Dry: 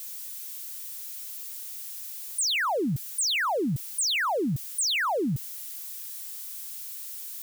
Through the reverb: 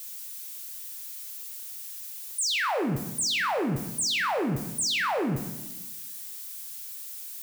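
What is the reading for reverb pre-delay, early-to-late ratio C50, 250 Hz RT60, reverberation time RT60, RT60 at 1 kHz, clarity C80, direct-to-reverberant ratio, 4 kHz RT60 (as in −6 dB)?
13 ms, 8.5 dB, 1.3 s, 1.1 s, 1.0 s, 10.0 dB, 5.5 dB, 0.80 s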